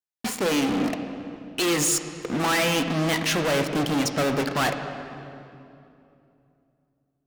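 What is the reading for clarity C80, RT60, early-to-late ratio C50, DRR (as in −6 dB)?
8.0 dB, 2.8 s, 7.5 dB, 6.5 dB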